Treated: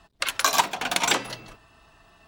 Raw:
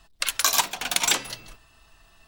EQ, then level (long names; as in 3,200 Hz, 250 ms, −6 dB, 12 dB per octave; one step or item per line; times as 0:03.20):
high-pass filter 120 Hz 6 dB per octave
high-shelf EQ 2,200 Hz −10 dB
high-shelf EQ 10,000 Hz −5 dB
+6.5 dB